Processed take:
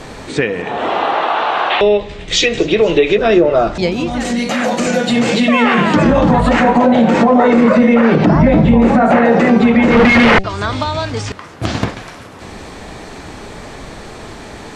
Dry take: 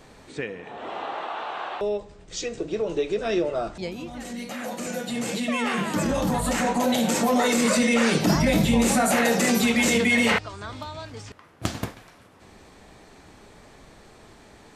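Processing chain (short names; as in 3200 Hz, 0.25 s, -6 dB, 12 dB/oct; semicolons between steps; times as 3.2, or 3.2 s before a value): in parallel at 0 dB: compressor, threshold -33 dBFS, peak gain reduction 16 dB; 9.9–10.44 on the sum: Schmitt trigger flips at -27.5 dBFS; high shelf 11000 Hz -8 dB; de-hum 192.4 Hz, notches 4; treble ducked by the level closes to 1400 Hz, closed at -16 dBFS; 1.7–3.18 band shelf 2700 Hz +9 dB 1.3 oct; thin delay 0.246 s, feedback 69%, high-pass 5400 Hz, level -18.5 dB; maximiser +13.5 dB; gain -1 dB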